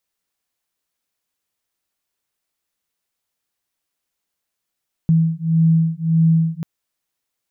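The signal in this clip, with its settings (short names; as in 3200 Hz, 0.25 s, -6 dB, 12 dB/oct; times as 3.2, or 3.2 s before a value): beating tones 162 Hz, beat 1.7 Hz, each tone -16 dBFS 1.54 s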